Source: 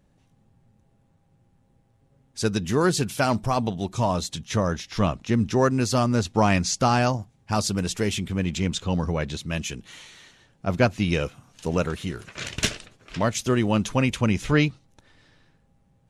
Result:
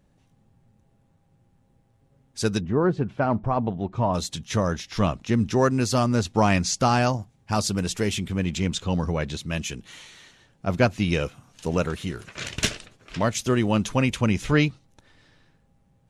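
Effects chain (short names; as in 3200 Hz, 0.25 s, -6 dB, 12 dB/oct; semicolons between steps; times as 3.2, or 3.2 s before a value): 2.6–4.13 LPF 1000 Hz -> 1900 Hz 12 dB/oct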